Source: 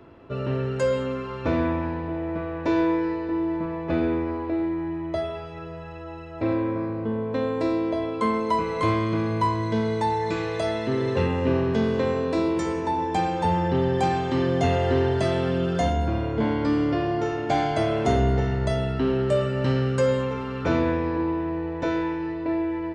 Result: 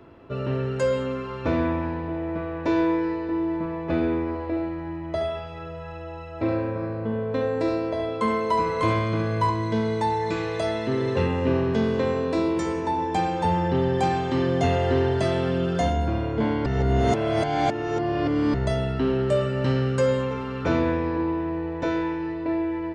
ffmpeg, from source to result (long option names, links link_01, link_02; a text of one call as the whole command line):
ffmpeg -i in.wav -filter_complex "[0:a]asettb=1/sr,asplit=3[link_01][link_02][link_03];[link_01]atrim=end=4.284[link_04];[link_02]atrim=start=4.28:end=9.5,asetpts=PTS-STARTPTS,afade=type=in:duration=0.004:curve=qsin,afade=type=out:start_time=5.216:duration=0.004:curve=qsin,aecho=1:1:71:0.473,atrim=end_sample=230202[link_05];[link_03]atrim=start=9.496[link_06];[link_04][link_05]acrossfade=duration=0.004:curve1=hsin:curve2=qsin[link_07];[link_07][link_06]acrossfade=duration=0.004:curve1=qsin:curve2=hsin,asplit=3[link_08][link_09][link_10];[link_08]atrim=end=16.662[link_11];[link_09]atrim=start=16.658:end=18.542,asetpts=PTS-STARTPTS,areverse[link_12];[link_10]atrim=start=18.538[link_13];[link_11][link_12]acrossfade=duration=0.004:curve1=hsin:curve2=hsin[link_14];[link_14][link_13]acrossfade=duration=0.004:curve1=hsin:curve2=hsin" out.wav